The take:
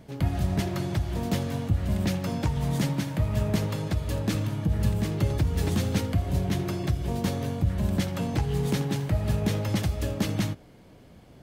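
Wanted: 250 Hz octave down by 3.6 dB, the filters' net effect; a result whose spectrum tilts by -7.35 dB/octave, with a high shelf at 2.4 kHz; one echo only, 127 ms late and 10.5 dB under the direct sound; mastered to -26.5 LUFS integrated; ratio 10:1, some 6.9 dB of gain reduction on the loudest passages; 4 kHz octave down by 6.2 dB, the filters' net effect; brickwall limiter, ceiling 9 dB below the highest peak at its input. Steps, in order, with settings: peaking EQ 250 Hz -5.5 dB; treble shelf 2.4 kHz -5 dB; peaking EQ 4 kHz -3.5 dB; compression 10:1, threshold -27 dBFS; peak limiter -27.5 dBFS; delay 127 ms -10.5 dB; trim +9.5 dB

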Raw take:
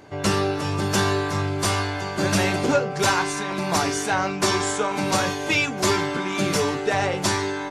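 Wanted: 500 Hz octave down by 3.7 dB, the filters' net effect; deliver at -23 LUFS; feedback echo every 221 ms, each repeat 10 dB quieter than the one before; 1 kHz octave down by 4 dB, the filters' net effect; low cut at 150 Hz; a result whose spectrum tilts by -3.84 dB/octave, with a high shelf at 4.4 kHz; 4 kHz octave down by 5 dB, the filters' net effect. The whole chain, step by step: high-pass 150 Hz; peaking EQ 500 Hz -4 dB; peaking EQ 1 kHz -3.5 dB; peaking EQ 4 kHz -4 dB; treble shelf 4.4 kHz -4 dB; feedback delay 221 ms, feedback 32%, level -10 dB; trim +2.5 dB

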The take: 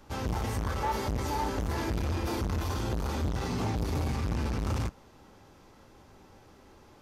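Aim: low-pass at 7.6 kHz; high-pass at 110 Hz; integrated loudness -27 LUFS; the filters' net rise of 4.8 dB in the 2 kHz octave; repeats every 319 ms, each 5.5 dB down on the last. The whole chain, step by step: high-pass 110 Hz; low-pass 7.6 kHz; peaking EQ 2 kHz +6 dB; feedback delay 319 ms, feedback 53%, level -5.5 dB; trim +5 dB

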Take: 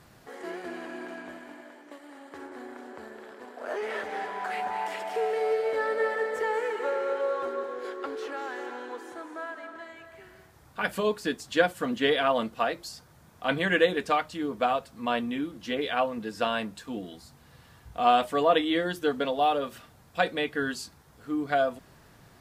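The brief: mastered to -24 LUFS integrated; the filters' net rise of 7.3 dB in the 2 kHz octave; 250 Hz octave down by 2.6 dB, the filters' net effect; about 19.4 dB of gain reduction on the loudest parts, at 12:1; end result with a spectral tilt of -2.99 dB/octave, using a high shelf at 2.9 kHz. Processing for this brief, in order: peaking EQ 250 Hz -3.5 dB; peaking EQ 2 kHz +8 dB; treble shelf 2.9 kHz +4 dB; compression 12:1, threshold -34 dBFS; trim +14.5 dB

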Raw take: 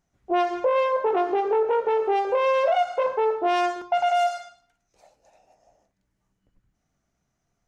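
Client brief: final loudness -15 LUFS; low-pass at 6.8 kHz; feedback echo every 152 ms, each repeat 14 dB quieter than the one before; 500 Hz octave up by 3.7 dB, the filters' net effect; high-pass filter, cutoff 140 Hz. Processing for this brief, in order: high-pass 140 Hz; low-pass 6.8 kHz; peaking EQ 500 Hz +4.5 dB; feedback delay 152 ms, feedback 20%, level -14 dB; trim +5 dB

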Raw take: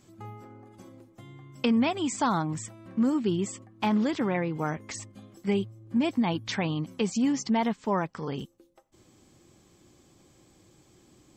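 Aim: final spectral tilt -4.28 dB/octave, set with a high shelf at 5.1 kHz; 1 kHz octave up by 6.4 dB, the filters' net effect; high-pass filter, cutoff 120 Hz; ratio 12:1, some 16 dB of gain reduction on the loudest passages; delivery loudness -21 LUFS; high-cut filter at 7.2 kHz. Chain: high-pass 120 Hz; low-pass 7.2 kHz; peaking EQ 1 kHz +7.5 dB; treble shelf 5.1 kHz +7 dB; compression 12:1, threshold -33 dBFS; trim +17.5 dB

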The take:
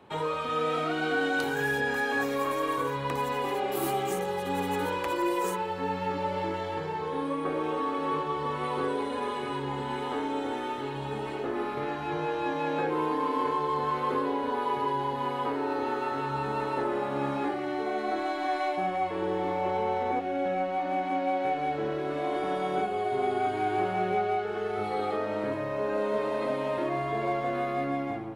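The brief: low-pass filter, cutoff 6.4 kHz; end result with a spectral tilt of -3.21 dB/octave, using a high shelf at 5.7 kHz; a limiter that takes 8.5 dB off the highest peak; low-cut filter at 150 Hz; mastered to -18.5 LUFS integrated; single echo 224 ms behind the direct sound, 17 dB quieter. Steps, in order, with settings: high-pass 150 Hz; low-pass 6.4 kHz; treble shelf 5.7 kHz +8.5 dB; peak limiter -23 dBFS; delay 224 ms -17 dB; trim +13 dB

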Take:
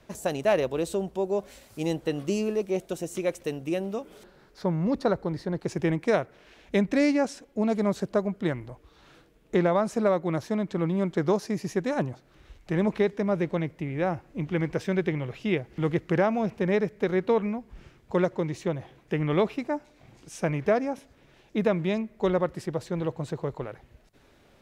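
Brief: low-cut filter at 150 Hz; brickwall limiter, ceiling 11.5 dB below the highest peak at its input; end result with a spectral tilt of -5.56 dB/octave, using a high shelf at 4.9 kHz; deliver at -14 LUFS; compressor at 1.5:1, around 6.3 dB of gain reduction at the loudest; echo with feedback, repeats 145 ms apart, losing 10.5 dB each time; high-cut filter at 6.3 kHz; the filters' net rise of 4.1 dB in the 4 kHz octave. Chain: high-pass 150 Hz; low-pass 6.3 kHz; peaking EQ 4 kHz +4 dB; treble shelf 4.9 kHz +4 dB; compression 1.5:1, threshold -36 dBFS; peak limiter -26.5 dBFS; feedback delay 145 ms, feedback 30%, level -10.5 dB; trim +23.5 dB

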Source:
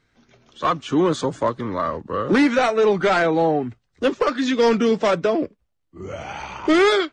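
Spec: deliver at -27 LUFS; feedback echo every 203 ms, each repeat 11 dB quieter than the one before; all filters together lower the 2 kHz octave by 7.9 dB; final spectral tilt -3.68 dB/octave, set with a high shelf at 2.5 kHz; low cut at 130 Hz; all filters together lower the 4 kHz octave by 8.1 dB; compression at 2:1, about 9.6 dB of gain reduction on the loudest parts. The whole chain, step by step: high-pass 130 Hz; peaking EQ 2 kHz -8 dB; treble shelf 2.5 kHz -4.5 dB; peaking EQ 4 kHz -3.5 dB; compression 2:1, threshold -32 dBFS; feedback delay 203 ms, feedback 28%, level -11 dB; trim +3 dB

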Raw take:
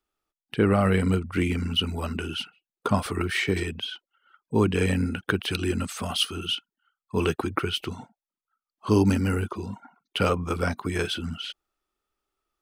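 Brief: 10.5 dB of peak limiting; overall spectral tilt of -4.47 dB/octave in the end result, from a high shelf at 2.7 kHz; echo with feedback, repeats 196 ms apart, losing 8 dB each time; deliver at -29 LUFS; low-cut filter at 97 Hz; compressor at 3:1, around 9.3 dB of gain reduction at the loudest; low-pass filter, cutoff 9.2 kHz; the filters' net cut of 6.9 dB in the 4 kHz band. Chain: high-pass 97 Hz; low-pass 9.2 kHz; treble shelf 2.7 kHz -6.5 dB; peaking EQ 4 kHz -5 dB; compression 3:1, threshold -29 dBFS; peak limiter -23.5 dBFS; feedback delay 196 ms, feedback 40%, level -8 dB; trim +6 dB

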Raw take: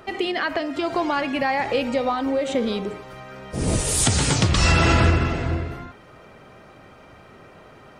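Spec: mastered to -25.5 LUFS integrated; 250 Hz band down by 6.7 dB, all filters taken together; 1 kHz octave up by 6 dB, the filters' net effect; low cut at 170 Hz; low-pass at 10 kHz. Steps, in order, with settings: high-pass 170 Hz; low-pass 10 kHz; peaking EQ 250 Hz -8.5 dB; peaking EQ 1 kHz +8.5 dB; trim -4.5 dB

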